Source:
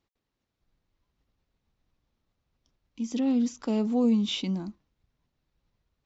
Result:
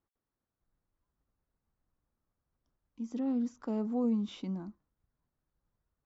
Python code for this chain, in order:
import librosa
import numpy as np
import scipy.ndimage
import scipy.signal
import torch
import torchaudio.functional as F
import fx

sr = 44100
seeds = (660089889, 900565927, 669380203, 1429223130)

y = fx.high_shelf_res(x, sr, hz=2000.0, db=-9.0, q=1.5)
y = y * 10.0 ** (-7.0 / 20.0)